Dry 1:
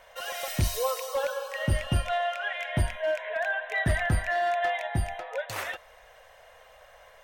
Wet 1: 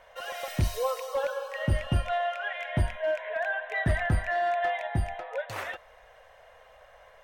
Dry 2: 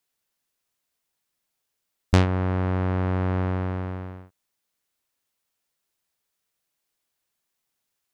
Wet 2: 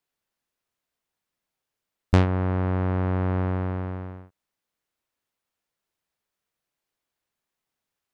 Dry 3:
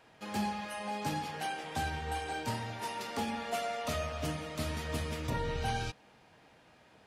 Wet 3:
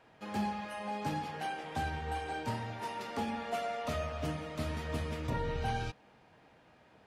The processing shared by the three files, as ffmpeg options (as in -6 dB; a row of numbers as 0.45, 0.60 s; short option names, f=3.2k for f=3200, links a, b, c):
-af "highshelf=f=3.5k:g=-9"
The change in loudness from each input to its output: -1.0, 0.0, -1.0 LU